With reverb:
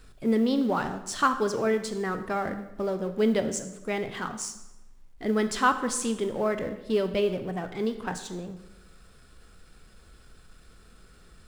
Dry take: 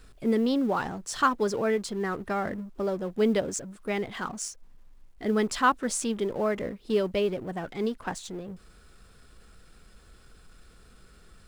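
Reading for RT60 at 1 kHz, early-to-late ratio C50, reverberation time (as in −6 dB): 0.95 s, 11.0 dB, 0.95 s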